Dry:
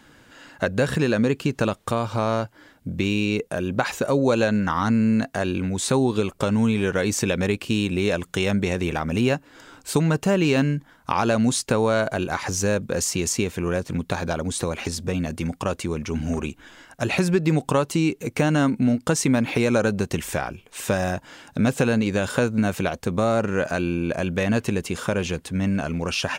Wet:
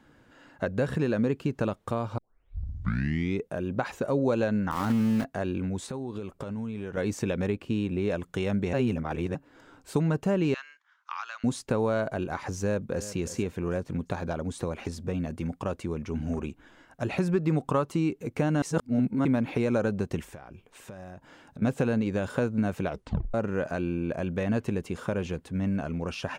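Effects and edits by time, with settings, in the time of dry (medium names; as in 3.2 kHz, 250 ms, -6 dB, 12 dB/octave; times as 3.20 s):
2.18 s: tape start 1.26 s
4.71–5.25 s: block-companded coder 3-bit
5.86–6.97 s: compression, threshold -26 dBFS
7.50–8.10 s: treble shelf 3.5 kHz -6.5 dB
8.73–9.35 s: reverse
10.54–11.44 s: elliptic band-pass 1.2–6.5 kHz, stop band 70 dB
12.61–13.07 s: echo throw 350 ms, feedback 35%, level -14.5 dB
17.32–18.10 s: peaking EQ 1.2 kHz +6.5 dB 0.33 oct
18.62–19.25 s: reverse
20.24–21.62 s: compression 10:1, threshold -33 dBFS
22.89 s: tape stop 0.45 s
whole clip: treble shelf 2 kHz -11 dB; trim -5 dB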